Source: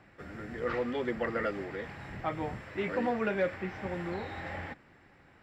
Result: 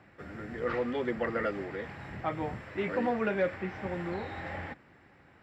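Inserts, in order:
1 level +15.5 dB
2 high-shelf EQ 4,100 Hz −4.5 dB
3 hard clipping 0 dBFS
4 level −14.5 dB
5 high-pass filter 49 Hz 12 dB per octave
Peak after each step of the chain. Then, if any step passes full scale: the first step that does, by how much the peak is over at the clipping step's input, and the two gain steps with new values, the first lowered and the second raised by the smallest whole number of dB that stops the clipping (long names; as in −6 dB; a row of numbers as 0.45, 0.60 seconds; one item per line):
−3.5, −4.0, −4.0, −18.5, −18.0 dBFS
no step passes full scale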